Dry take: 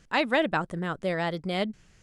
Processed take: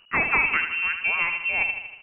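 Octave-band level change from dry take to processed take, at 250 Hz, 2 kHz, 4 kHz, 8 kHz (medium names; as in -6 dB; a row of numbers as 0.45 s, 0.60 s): -11.5 dB, +10.0 dB, -2.0 dB, no reading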